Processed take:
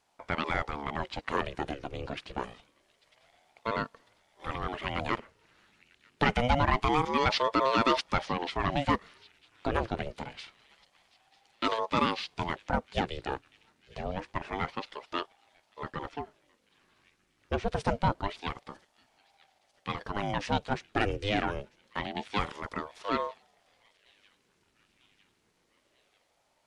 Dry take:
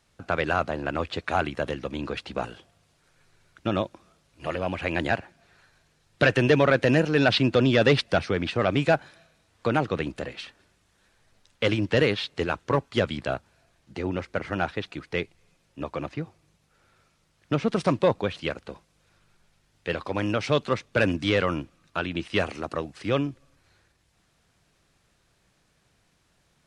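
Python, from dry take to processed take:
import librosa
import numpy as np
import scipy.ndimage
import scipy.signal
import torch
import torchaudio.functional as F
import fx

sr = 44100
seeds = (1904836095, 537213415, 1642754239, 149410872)

y = fx.echo_wet_highpass(x, sr, ms=947, feedback_pct=61, hz=2300.0, wet_db=-22)
y = fx.ring_lfo(y, sr, carrier_hz=500.0, swing_pct=60, hz=0.26)
y = F.gain(torch.from_numpy(y), -3.0).numpy()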